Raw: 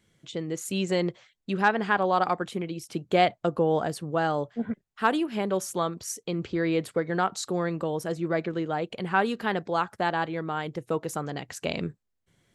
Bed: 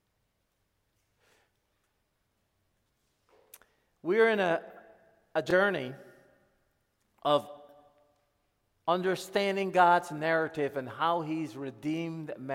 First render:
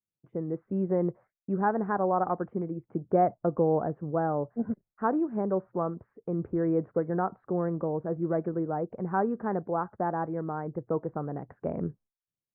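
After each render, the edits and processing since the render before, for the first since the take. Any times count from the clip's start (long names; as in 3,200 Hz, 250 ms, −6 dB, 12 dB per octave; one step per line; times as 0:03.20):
downward expander −47 dBFS
Bessel low-pass filter 840 Hz, order 8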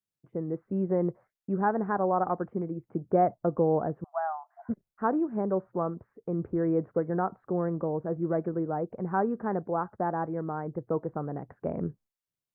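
0:04.04–0:04.69: linear-phase brick-wall high-pass 630 Hz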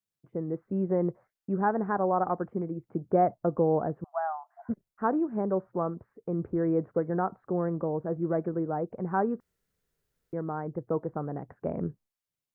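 0:09.40–0:10.33: fill with room tone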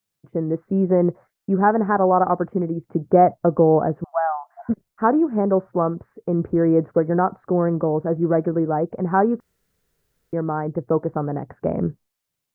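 level +9.5 dB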